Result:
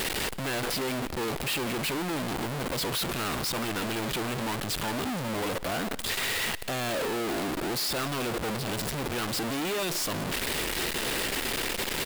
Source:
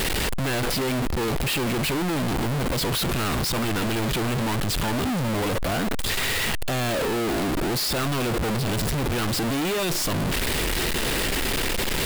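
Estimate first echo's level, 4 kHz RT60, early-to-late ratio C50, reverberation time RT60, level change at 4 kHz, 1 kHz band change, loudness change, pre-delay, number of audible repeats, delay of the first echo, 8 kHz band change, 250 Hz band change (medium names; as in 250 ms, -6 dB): -20.0 dB, no reverb, no reverb, no reverb, -4.0 dB, -4.0 dB, -5.0 dB, no reverb, 1, 176 ms, -4.0 dB, -7.0 dB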